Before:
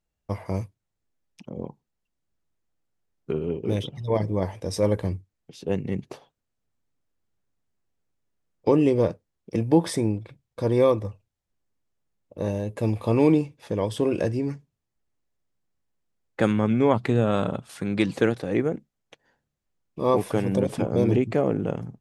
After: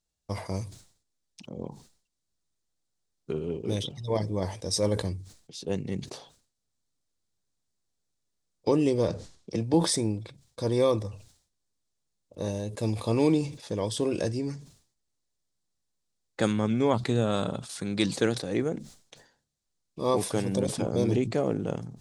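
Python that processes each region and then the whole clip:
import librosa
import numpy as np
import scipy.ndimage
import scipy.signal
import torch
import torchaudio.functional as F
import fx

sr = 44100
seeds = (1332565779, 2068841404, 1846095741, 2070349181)

y = fx.chain(x, sr, fx.lowpass(hz=7000.0, slope=12),
    fx.band_squash(depth_pct=40), at=(9.08, 9.74))
y = fx.band_shelf(y, sr, hz=5900.0, db=11.0, octaves=1.7)
y = fx.sustainer(y, sr, db_per_s=110.0)
y = F.gain(torch.from_numpy(y), -4.5).numpy()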